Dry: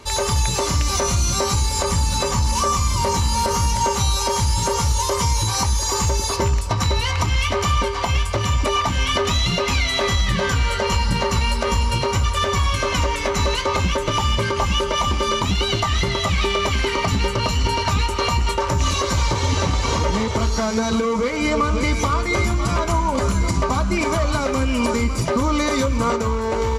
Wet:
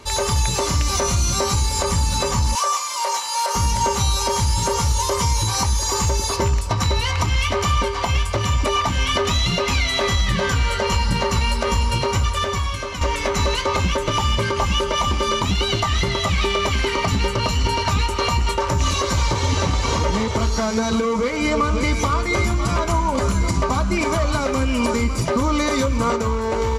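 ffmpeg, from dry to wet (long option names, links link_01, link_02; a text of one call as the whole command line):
ffmpeg -i in.wav -filter_complex "[0:a]asettb=1/sr,asplit=3[link_01][link_02][link_03];[link_01]atrim=end=2.554[link_04];[link_02]atrim=start=2.55:end=3.55,asetpts=PTS-STARTPTS,afade=type=in:duration=0.004:curve=qsin,afade=type=out:start_time=0.996:duration=0.004:curve=qsin,highpass=frequency=560:width=0.5412,highpass=frequency=560:width=1.3066[link_05];[link_03]atrim=start=3.546[link_06];[link_04][link_05]acrossfade=duration=0.004:curve1=hsin:curve2=qsin[link_07];[link_07][link_06]acrossfade=duration=0.004:curve1=qsin:curve2=hsin,asplit=2[link_08][link_09];[link_08]atrim=end=13.01,asetpts=PTS-STARTPTS,afade=type=out:start_time=12.2:duration=0.81:silence=0.334965[link_10];[link_09]atrim=start=13.01,asetpts=PTS-STARTPTS,afade=type=in:duration=0.004:curve=hsin:silence=0.334965[link_11];[link_10][link_11]concat=n=2:v=0:a=1" out.wav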